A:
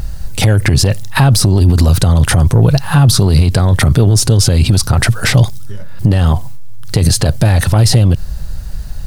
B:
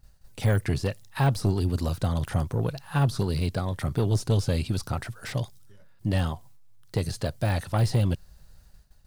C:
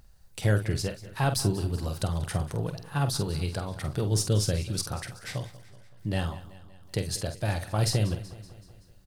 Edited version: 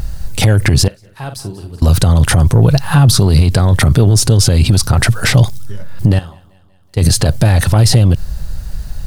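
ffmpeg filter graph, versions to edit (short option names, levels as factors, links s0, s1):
-filter_complex "[2:a]asplit=2[s0][s1];[0:a]asplit=3[s2][s3][s4];[s2]atrim=end=0.882[s5];[s0]atrim=start=0.878:end=1.822[s6];[s3]atrim=start=1.818:end=6.192[s7];[s1]atrim=start=6.188:end=6.972[s8];[s4]atrim=start=6.968[s9];[s5][s6]acrossfade=d=0.004:c1=hsin:c2=hsin[s10];[s10][s7]acrossfade=d=0.004:c1=hsin:c2=hsin[s11];[s11][s8]acrossfade=d=0.004:c1=hsin:c2=hsin[s12];[s12][s9]acrossfade=d=0.004:c1=hsin:c2=hsin"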